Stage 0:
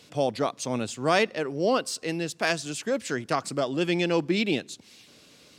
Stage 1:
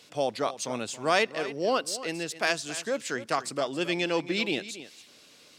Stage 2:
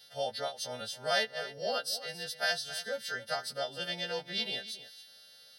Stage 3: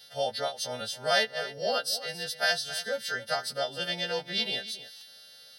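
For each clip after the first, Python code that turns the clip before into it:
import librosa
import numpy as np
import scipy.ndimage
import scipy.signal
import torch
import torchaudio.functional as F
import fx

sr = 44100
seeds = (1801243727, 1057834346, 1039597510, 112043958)

y1 = fx.low_shelf(x, sr, hz=290.0, db=-10.5)
y1 = y1 + 10.0 ** (-14.5 / 20.0) * np.pad(y1, (int(274 * sr / 1000.0), 0))[:len(y1)]
y2 = fx.freq_snap(y1, sr, grid_st=2)
y2 = fx.fixed_phaser(y2, sr, hz=1600.0, stages=8)
y2 = y2 * 10.0 ** (-5.0 / 20.0)
y3 = fx.buffer_glitch(y2, sr, at_s=(4.96,), block=256, repeats=8)
y3 = y3 * 10.0 ** (4.5 / 20.0)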